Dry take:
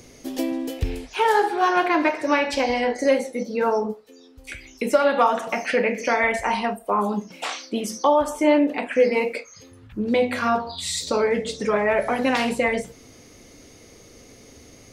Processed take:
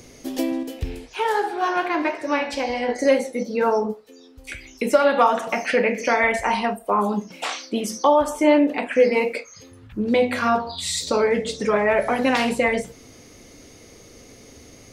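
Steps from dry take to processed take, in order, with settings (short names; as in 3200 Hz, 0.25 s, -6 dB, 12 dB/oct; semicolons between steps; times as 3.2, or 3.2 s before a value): 0.63–2.89 flange 1.3 Hz, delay 9.9 ms, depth 8.5 ms, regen +78%; gain +1.5 dB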